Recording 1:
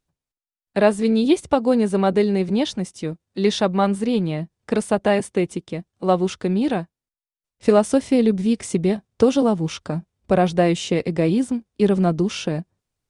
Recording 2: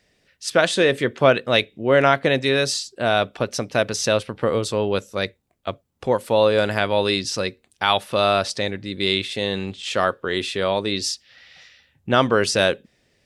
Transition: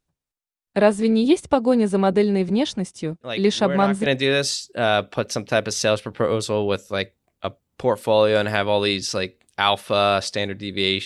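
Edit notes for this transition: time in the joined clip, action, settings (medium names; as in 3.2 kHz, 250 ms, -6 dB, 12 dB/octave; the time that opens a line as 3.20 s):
recording 1
3.21 s: add recording 2 from 1.44 s 0.85 s -11 dB
4.06 s: go over to recording 2 from 2.29 s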